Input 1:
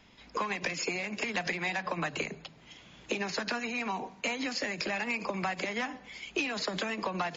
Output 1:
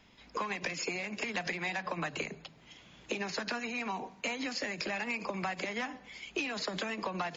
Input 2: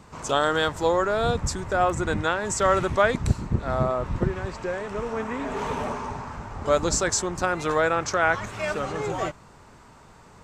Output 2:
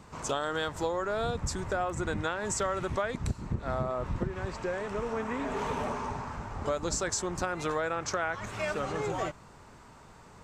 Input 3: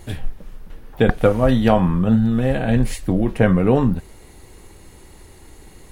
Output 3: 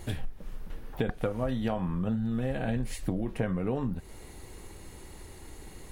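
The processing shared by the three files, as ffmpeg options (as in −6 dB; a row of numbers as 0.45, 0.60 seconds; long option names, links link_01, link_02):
-af "acompressor=threshold=-25dB:ratio=6,volume=-2.5dB"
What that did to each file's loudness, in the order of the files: −2.5, −7.5, −14.0 LU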